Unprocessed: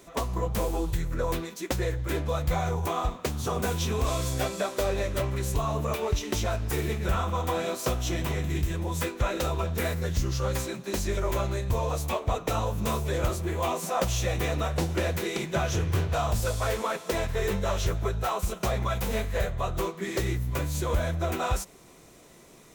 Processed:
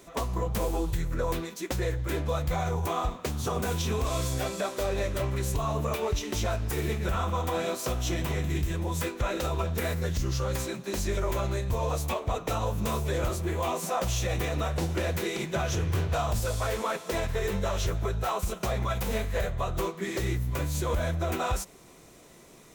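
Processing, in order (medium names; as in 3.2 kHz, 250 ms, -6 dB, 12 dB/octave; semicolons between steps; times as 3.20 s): peak limiter -19 dBFS, peak gain reduction 5.5 dB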